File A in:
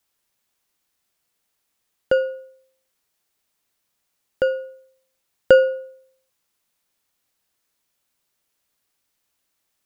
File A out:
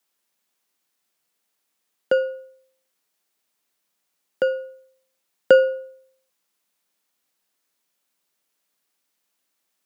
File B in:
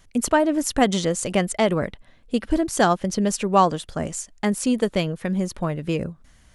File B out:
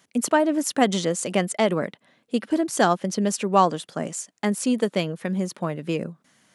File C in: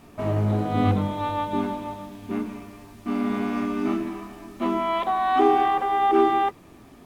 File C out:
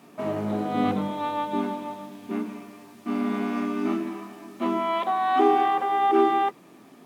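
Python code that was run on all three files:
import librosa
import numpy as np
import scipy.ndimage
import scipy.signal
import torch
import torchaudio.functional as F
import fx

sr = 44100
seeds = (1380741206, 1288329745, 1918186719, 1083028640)

y = scipy.signal.sosfilt(scipy.signal.butter(4, 160.0, 'highpass', fs=sr, output='sos'), x)
y = y * 10.0 ** (-1.0 / 20.0)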